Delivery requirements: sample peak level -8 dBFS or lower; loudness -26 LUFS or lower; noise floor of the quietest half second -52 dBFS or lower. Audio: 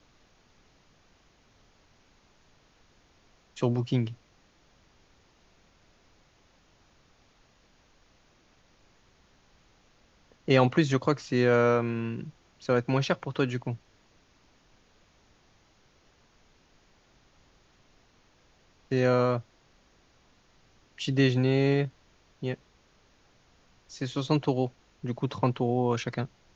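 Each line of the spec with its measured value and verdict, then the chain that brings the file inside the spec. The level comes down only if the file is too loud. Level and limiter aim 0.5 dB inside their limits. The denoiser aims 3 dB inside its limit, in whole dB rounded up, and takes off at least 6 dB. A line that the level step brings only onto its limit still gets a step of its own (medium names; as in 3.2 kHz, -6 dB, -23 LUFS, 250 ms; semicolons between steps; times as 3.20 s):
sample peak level -9.0 dBFS: pass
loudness -28.0 LUFS: pass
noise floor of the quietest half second -63 dBFS: pass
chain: none needed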